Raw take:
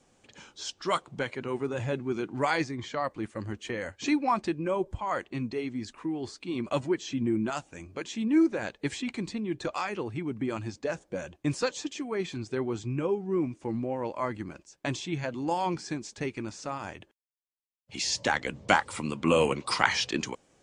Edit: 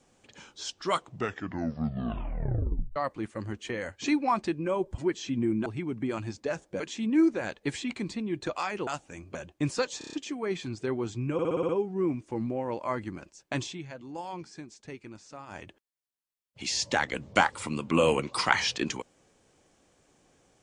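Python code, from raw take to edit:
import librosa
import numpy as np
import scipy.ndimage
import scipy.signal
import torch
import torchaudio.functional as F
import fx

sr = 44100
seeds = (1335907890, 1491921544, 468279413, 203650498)

y = fx.edit(x, sr, fx.tape_stop(start_s=0.95, length_s=2.01),
    fx.cut(start_s=4.98, length_s=1.84),
    fx.swap(start_s=7.5, length_s=0.48, other_s=10.05, other_length_s=1.14),
    fx.stutter(start_s=11.82, slice_s=0.03, count=6),
    fx.stutter(start_s=13.02, slice_s=0.06, count=7),
    fx.fade_down_up(start_s=15.0, length_s=1.94, db=-9.5, fade_s=0.14), tone=tone)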